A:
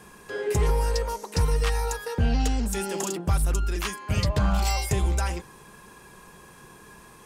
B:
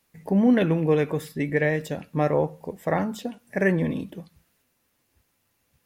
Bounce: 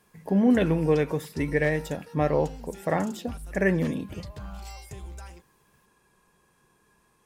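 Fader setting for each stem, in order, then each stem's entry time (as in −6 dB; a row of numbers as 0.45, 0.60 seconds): −16.5, −1.5 decibels; 0.00, 0.00 seconds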